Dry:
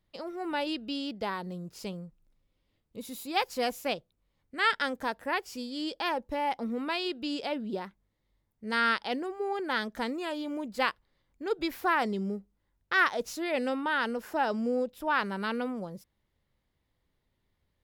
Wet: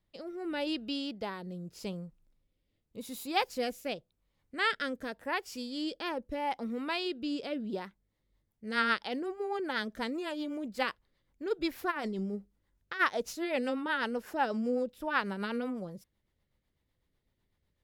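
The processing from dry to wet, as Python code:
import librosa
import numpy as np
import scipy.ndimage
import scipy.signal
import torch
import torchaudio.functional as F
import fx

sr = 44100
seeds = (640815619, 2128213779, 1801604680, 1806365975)

y = fx.rotary_switch(x, sr, hz=0.85, then_hz=8.0, switch_at_s=7.7)
y = fx.over_compress(y, sr, threshold_db=-35.0, ratio=-1.0, at=(11.9, 12.99), fade=0.02)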